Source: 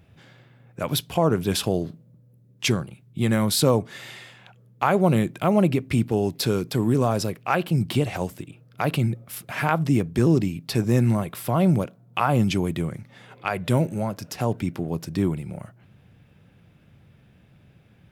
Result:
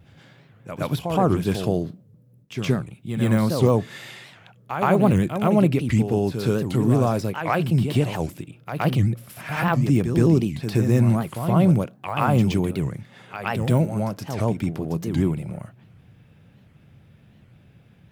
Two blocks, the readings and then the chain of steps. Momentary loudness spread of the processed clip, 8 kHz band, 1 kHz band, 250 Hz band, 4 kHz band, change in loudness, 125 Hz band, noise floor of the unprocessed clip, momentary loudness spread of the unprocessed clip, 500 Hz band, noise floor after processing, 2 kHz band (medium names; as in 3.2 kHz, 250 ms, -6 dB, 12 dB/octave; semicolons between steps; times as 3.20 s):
13 LU, -7.0 dB, +0.5 dB, +2.0 dB, -5.5 dB, +1.5 dB, +3.0 dB, -56 dBFS, 12 LU, +1.0 dB, -54 dBFS, 0.0 dB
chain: gate with hold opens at -48 dBFS; de-esser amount 70%; peaking EQ 140 Hz +2.5 dB 1.5 oct; reverse echo 120 ms -7.5 dB; warped record 78 rpm, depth 250 cents